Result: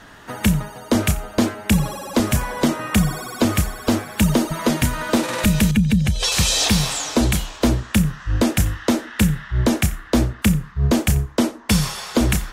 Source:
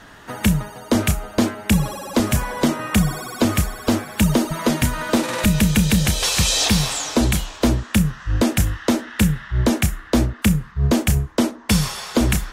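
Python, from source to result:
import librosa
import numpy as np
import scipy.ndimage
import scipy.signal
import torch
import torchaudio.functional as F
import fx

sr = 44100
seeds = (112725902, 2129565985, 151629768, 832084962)

y = fx.spec_expand(x, sr, power=1.6, at=(5.71, 6.32))
y = y + 10.0 ** (-22.0 / 20.0) * np.pad(y, (int(89 * sr / 1000.0), 0))[:len(y)]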